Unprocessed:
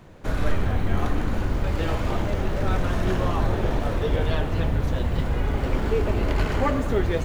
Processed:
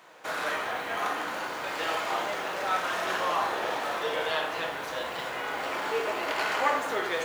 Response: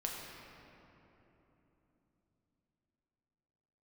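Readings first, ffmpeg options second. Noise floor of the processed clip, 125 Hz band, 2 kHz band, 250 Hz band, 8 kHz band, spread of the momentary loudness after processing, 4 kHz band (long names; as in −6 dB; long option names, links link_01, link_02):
−36 dBFS, −29.5 dB, +4.0 dB, −14.5 dB, can't be measured, 6 LU, +4.0 dB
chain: -filter_complex "[0:a]highpass=770[link_01];[1:a]atrim=start_sample=2205,atrim=end_sample=4410[link_02];[link_01][link_02]afir=irnorm=-1:irlink=0,volume=4.5dB"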